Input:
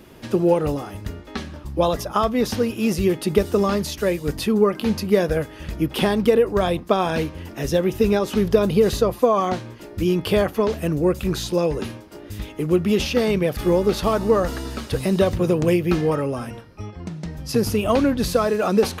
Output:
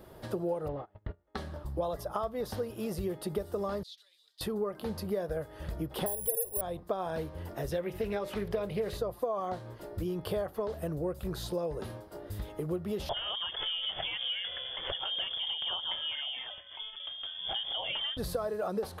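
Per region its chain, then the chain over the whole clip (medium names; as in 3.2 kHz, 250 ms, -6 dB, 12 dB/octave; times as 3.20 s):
0.68–1.35 s: CVSD coder 32 kbps + low-pass 2.9 kHz 24 dB/octave + gate -31 dBFS, range -28 dB
3.83–4.41 s: compression 12:1, threshold -24 dBFS + ladder band-pass 4 kHz, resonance 70%
6.06–6.61 s: tone controls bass +3 dB, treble -7 dB + static phaser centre 580 Hz, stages 4 + careless resampling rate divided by 4×, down none, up zero stuff
7.71–8.98 s: peaking EQ 2.3 kHz +13 dB 0.68 oct + hum notches 60/120/180/240/300/360/420/480/540/600 Hz + loudspeaker Doppler distortion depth 0.13 ms
13.09–18.17 s: frequency inversion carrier 3.4 kHz + swell ahead of each attack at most 100 dB/s
whole clip: fifteen-band graphic EQ 250 Hz -9 dB, 630 Hz +5 dB, 2.5 kHz -11 dB, 6.3 kHz -9 dB; compression 3:1, threshold -29 dBFS; trim -4.5 dB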